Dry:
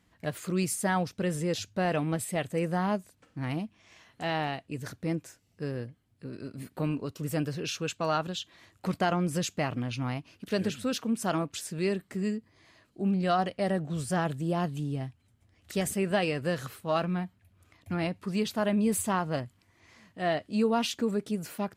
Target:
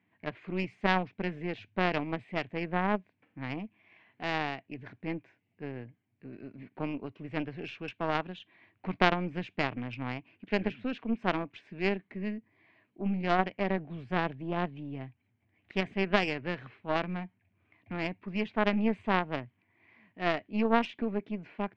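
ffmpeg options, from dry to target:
-af "acontrast=51,highpass=f=110:w=0.5412,highpass=f=110:w=1.3066,equalizer=f=150:t=q:w=4:g=-7,equalizer=f=520:t=q:w=4:g=-7,equalizer=f=1.3k:t=q:w=4:g=-9,equalizer=f=2.3k:t=q:w=4:g=6,lowpass=f=2.6k:w=0.5412,lowpass=f=2.6k:w=1.3066,aeval=exprs='0.376*(cos(1*acos(clip(val(0)/0.376,-1,1)))-cos(1*PI/2))+0.0944*(cos(2*acos(clip(val(0)/0.376,-1,1)))-cos(2*PI/2))+0.0841*(cos(3*acos(clip(val(0)/0.376,-1,1)))-cos(3*PI/2))':c=same"

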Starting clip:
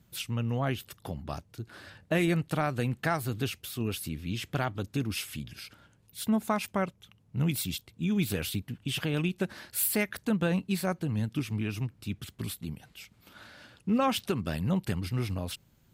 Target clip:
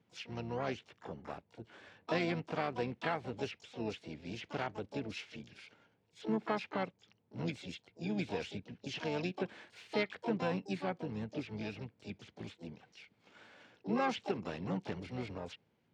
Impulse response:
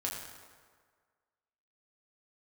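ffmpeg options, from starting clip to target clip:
-filter_complex "[0:a]highpass=140,equalizer=f=140:t=q:w=4:g=-4,equalizer=f=460:t=q:w=4:g=8,equalizer=f=820:t=q:w=4:g=4,equalizer=f=1.2k:t=q:w=4:g=-4,equalizer=f=2.2k:t=q:w=4:g=4,lowpass=f=3.3k:w=0.5412,lowpass=f=3.3k:w=1.3066,asplit=4[a][b][c][d];[b]asetrate=29433,aresample=44100,atempo=1.49831,volume=-16dB[e];[c]asetrate=66075,aresample=44100,atempo=0.66742,volume=-9dB[f];[d]asetrate=88200,aresample=44100,atempo=0.5,volume=-10dB[g];[a][e][f][g]amix=inputs=4:normalize=0,volume=-8.5dB"

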